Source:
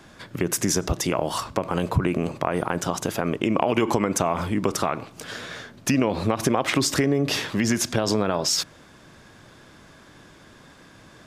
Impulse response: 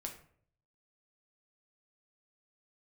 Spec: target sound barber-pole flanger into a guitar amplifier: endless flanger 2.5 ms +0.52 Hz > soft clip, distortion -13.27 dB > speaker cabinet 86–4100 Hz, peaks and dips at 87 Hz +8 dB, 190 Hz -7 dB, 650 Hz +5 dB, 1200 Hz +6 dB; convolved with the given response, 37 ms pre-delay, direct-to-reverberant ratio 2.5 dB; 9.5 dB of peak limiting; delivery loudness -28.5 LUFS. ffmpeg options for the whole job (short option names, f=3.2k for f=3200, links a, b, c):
-filter_complex "[0:a]alimiter=limit=-15.5dB:level=0:latency=1,asplit=2[a][b];[1:a]atrim=start_sample=2205,adelay=37[c];[b][c]afir=irnorm=-1:irlink=0,volume=-0.5dB[d];[a][d]amix=inputs=2:normalize=0,asplit=2[e][f];[f]adelay=2.5,afreqshift=0.52[g];[e][g]amix=inputs=2:normalize=1,asoftclip=threshold=-24.5dB,highpass=86,equalizer=f=87:t=q:w=4:g=8,equalizer=f=190:t=q:w=4:g=-7,equalizer=f=650:t=q:w=4:g=5,equalizer=f=1.2k:t=q:w=4:g=6,lowpass=f=4.1k:w=0.5412,lowpass=f=4.1k:w=1.3066,volume=3dB"